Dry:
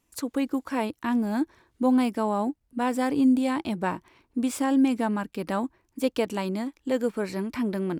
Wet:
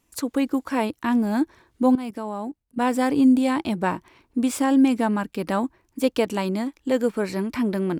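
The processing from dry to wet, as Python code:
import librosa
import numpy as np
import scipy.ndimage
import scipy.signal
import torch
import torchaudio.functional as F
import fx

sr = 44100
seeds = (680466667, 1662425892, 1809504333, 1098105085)

y = fx.level_steps(x, sr, step_db=17, at=(1.95, 2.78))
y = y * librosa.db_to_amplitude(4.0)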